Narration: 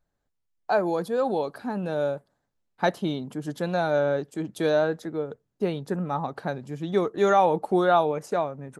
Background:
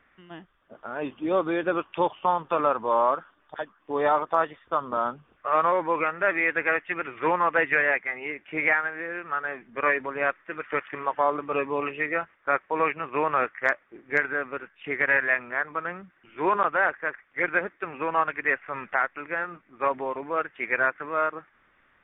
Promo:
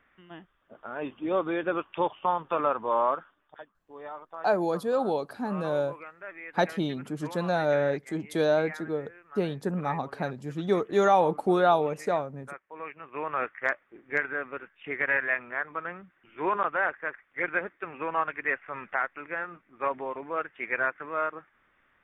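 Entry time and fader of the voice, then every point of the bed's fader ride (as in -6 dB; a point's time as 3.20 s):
3.75 s, -1.5 dB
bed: 3.22 s -3 dB
3.84 s -18.5 dB
12.66 s -18.5 dB
13.48 s -4 dB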